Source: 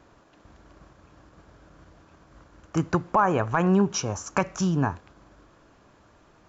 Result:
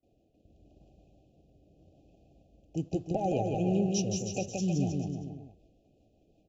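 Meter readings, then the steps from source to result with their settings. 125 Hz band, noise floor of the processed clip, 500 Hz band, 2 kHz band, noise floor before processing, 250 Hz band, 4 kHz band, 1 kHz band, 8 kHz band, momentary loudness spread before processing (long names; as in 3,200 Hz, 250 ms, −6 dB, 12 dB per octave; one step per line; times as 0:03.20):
−4.5 dB, −69 dBFS, −5.0 dB, −18.0 dB, −58 dBFS, −5.0 dB, −4.5 dB, −12.0 dB, can't be measured, 8 LU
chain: linear-phase brick-wall band-stop 820–2,400 Hz
in parallel at −10.5 dB: dead-zone distortion −46 dBFS
on the sum: rotating-speaker cabinet horn 0.85 Hz, later 5.5 Hz, at 0:03.23
noise gate with hold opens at −51 dBFS
on a send: bouncing-ball delay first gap 170 ms, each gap 0.85×, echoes 5
on the sum: one half of a high-frequency compander decoder only
level −7.5 dB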